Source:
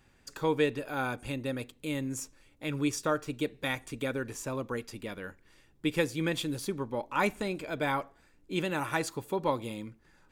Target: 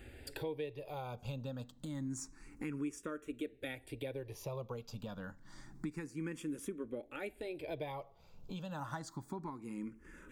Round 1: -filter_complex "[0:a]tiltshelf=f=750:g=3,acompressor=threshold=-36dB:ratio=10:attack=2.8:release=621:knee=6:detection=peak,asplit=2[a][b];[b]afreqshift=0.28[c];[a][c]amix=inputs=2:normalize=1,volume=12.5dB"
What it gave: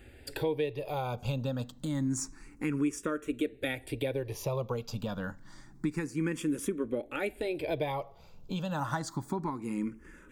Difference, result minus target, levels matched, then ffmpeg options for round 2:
compressor: peak gain reduction -9.5 dB
-filter_complex "[0:a]tiltshelf=f=750:g=3,acompressor=threshold=-46.5dB:ratio=10:attack=2.8:release=621:knee=6:detection=peak,asplit=2[a][b];[b]afreqshift=0.28[c];[a][c]amix=inputs=2:normalize=1,volume=12.5dB"

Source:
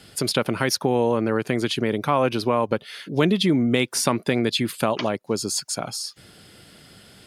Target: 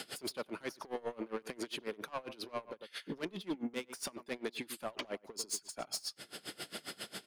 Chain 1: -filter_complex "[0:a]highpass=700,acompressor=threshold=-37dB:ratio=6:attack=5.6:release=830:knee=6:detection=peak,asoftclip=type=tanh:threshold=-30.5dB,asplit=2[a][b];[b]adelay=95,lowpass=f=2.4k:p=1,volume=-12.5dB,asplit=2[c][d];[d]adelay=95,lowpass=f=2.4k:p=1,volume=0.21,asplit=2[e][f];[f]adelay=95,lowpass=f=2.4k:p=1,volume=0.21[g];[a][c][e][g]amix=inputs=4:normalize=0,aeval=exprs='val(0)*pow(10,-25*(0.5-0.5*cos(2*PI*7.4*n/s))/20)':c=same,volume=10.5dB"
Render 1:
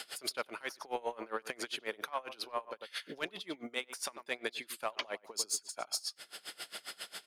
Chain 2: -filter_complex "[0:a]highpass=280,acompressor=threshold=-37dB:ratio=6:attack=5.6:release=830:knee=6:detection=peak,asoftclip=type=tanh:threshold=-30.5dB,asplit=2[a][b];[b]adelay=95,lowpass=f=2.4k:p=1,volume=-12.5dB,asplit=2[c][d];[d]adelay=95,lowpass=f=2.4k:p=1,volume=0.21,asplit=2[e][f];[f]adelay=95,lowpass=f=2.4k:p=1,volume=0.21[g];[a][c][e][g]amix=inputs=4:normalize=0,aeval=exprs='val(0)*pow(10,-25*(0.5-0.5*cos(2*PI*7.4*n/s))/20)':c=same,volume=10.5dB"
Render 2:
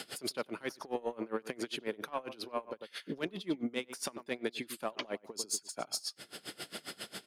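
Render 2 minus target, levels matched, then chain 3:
soft clip: distortion -11 dB
-filter_complex "[0:a]highpass=280,acompressor=threshold=-37dB:ratio=6:attack=5.6:release=830:knee=6:detection=peak,asoftclip=type=tanh:threshold=-40dB,asplit=2[a][b];[b]adelay=95,lowpass=f=2.4k:p=1,volume=-12.5dB,asplit=2[c][d];[d]adelay=95,lowpass=f=2.4k:p=1,volume=0.21,asplit=2[e][f];[f]adelay=95,lowpass=f=2.4k:p=1,volume=0.21[g];[a][c][e][g]amix=inputs=4:normalize=0,aeval=exprs='val(0)*pow(10,-25*(0.5-0.5*cos(2*PI*7.4*n/s))/20)':c=same,volume=10.5dB"

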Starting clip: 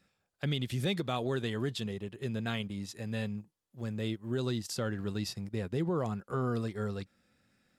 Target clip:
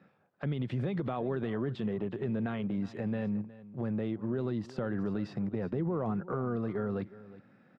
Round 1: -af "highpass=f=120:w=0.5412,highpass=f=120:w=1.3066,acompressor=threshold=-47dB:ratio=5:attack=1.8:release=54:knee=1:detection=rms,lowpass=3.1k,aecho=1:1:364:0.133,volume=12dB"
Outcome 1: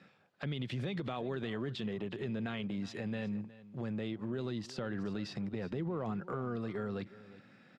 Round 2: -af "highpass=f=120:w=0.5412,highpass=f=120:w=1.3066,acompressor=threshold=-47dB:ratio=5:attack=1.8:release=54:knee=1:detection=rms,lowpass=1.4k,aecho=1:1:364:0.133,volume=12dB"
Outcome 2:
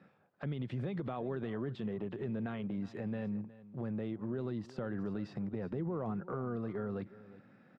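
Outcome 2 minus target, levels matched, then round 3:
compressor: peak gain reduction +5 dB
-af "highpass=f=120:w=0.5412,highpass=f=120:w=1.3066,acompressor=threshold=-41dB:ratio=5:attack=1.8:release=54:knee=1:detection=rms,lowpass=1.4k,aecho=1:1:364:0.133,volume=12dB"

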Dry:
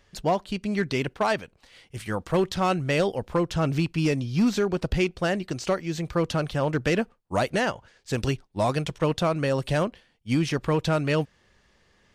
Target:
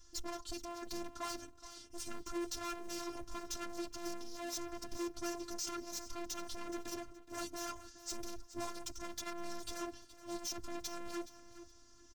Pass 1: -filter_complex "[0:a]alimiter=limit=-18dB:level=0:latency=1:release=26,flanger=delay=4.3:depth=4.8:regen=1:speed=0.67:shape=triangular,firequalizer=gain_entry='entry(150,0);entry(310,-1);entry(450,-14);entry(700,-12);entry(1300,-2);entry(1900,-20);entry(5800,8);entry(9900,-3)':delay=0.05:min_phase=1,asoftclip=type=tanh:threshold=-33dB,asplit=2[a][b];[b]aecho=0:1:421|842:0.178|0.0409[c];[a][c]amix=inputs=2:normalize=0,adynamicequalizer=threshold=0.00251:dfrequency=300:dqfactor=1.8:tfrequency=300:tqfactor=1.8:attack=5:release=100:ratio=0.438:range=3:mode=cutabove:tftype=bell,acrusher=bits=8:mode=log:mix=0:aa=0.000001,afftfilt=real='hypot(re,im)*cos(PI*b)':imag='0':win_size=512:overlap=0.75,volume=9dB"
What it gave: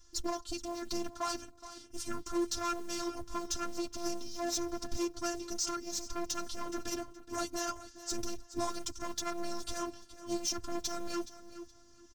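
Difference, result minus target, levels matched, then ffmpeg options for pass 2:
soft clip: distortion -5 dB
-filter_complex "[0:a]alimiter=limit=-18dB:level=0:latency=1:release=26,flanger=delay=4.3:depth=4.8:regen=1:speed=0.67:shape=triangular,firequalizer=gain_entry='entry(150,0);entry(310,-1);entry(450,-14);entry(700,-12);entry(1300,-2);entry(1900,-20);entry(5800,8);entry(9900,-3)':delay=0.05:min_phase=1,asoftclip=type=tanh:threshold=-43.5dB,asplit=2[a][b];[b]aecho=0:1:421|842:0.178|0.0409[c];[a][c]amix=inputs=2:normalize=0,adynamicequalizer=threshold=0.00251:dfrequency=300:dqfactor=1.8:tfrequency=300:tqfactor=1.8:attack=5:release=100:ratio=0.438:range=3:mode=cutabove:tftype=bell,acrusher=bits=8:mode=log:mix=0:aa=0.000001,afftfilt=real='hypot(re,im)*cos(PI*b)':imag='0':win_size=512:overlap=0.75,volume=9dB"

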